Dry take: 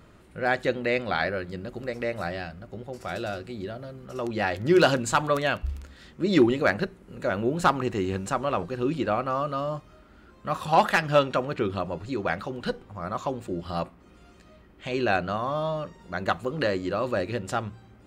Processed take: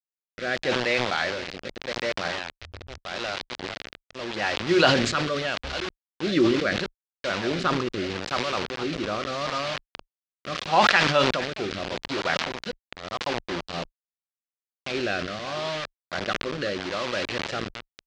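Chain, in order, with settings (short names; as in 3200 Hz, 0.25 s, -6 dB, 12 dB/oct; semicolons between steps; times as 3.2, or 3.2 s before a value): reverse delay 0.589 s, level -13 dB; bit-crush 5-bit; rotary speaker horn 0.8 Hz; 2.57–2.98 resonant low shelf 120 Hz +12.5 dB, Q 3; LPF 4800 Hz 24 dB/oct; tilt +2 dB/oct; sustainer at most 45 dB/s; gain +1 dB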